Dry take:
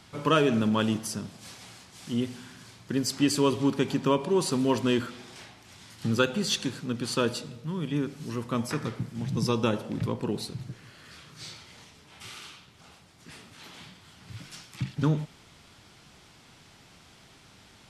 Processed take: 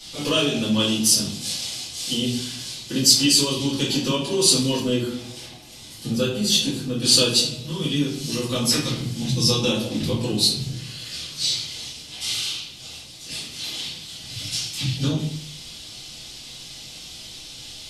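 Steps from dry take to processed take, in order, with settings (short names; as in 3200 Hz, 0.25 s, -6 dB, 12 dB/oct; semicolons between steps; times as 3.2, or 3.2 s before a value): 4.76–7.02 bell 4700 Hz -10.5 dB 2.8 oct; compressor 6:1, threshold -26 dBFS, peak gain reduction 8.5 dB; resonant high shelf 2400 Hz +13.5 dB, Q 1.5; shoebox room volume 43 m³, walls mixed, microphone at 2.4 m; gain -6 dB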